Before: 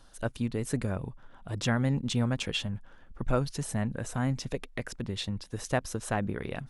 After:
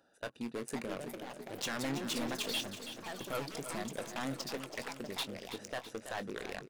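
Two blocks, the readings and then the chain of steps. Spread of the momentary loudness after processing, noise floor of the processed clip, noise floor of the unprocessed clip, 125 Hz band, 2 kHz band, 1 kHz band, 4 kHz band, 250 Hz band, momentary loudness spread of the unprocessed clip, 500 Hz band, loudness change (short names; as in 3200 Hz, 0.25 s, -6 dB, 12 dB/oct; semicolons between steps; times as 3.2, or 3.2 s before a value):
8 LU, -61 dBFS, -54 dBFS, -18.0 dB, -4.0 dB, -4.5 dB, -2.0 dB, -8.5 dB, 10 LU, -5.5 dB, -7.0 dB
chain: Wiener smoothing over 41 samples; HPF 250 Hz 12 dB/oct; tilt shelf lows -7.5 dB, about 640 Hz; notch 1100 Hz, Q 30; limiter -20 dBFS, peak gain reduction 10.5 dB; hard clip -34 dBFS, distortion -5 dB; doubler 22 ms -12 dB; echoes that change speed 0.586 s, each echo +5 st, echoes 3, each echo -6 dB; on a send: feedback echo 0.328 s, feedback 53%, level -10.5 dB; on the sum: gain +1.5 dB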